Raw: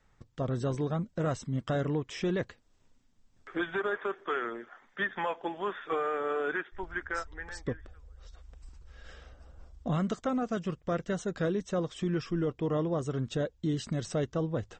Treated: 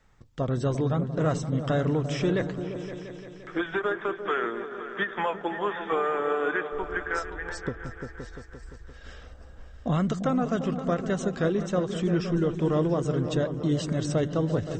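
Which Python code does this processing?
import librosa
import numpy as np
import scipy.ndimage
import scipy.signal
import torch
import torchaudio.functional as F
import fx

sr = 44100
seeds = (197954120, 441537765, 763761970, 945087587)

p1 = x + fx.echo_opening(x, sr, ms=173, hz=200, octaves=2, feedback_pct=70, wet_db=-6, dry=0)
p2 = fx.end_taper(p1, sr, db_per_s=220.0)
y = p2 * 10.0 ** (4.5 / 20.0)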